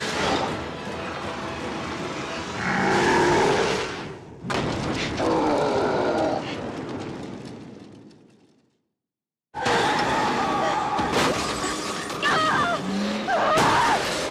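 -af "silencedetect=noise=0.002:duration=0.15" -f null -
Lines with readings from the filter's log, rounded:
silence_start: 8.61
silence_end: 9.54 | silence_duration: 0.93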